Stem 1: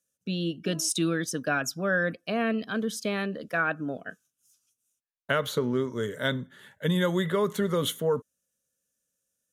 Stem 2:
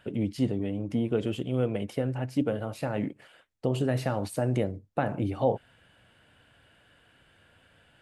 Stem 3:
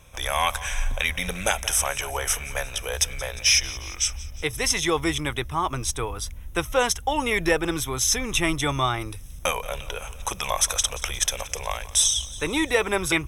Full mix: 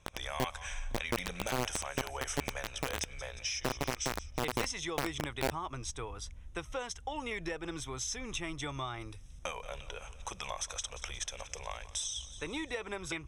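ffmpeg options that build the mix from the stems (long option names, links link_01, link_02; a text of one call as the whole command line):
ffmpeg -i stem1.wav -i stem2.wav -i stem3.wav -filter_complex "[1:a]acompressor=threshold=-43dB:ratio=2,acrusher=bits=4:mix=0:aa=0.000001,volume=3dB[link_01];[2:a]lowpass=frequency=8300:width=0.5412,lowpass=frequency=8300:width=1.3066,acompressor=threshold=-23dB:ratio=6,volume=-11dB[link_02];[link_01][link_02]amix=inputs=2:normalize=0" out.wav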